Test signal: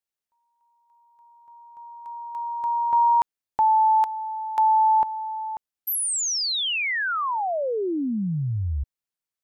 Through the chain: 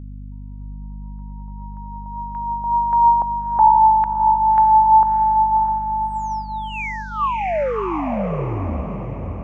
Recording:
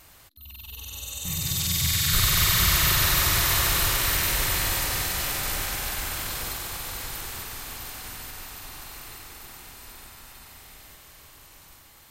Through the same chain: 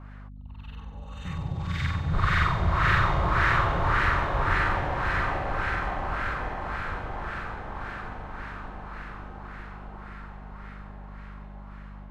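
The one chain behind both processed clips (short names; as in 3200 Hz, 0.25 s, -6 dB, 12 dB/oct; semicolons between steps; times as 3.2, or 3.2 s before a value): LFO low-pass sine 1.8 Hz 720–1700 Hz; hum 50 Hz, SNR 13 dB; diffused feedback echo 0.635 s, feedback 47%, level -5 dB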